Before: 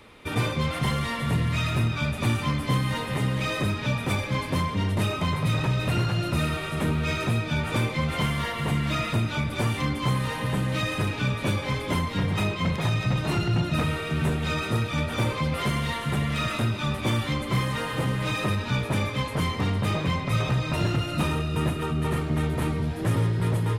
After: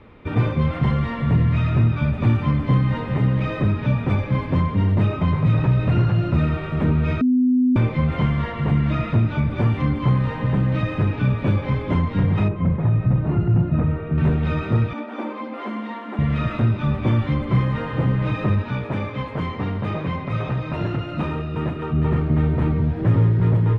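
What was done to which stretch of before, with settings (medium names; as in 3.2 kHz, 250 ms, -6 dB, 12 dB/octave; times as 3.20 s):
7.21–7.76 s: bleep 252 Hz -19.5 dBFS
12.48–14.18 s: tape spacing loss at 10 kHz 41 dB
14.93–16.19 s: rippled Chebyshev high-pass 210 Hz, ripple 6 dB
18.62–21.93 s: bass shelf 190 Hz -10.5 dB
whole clip: low-pass 2.2 kHz 12 dB/octave; bass shelf 370 Hz +8.5 dB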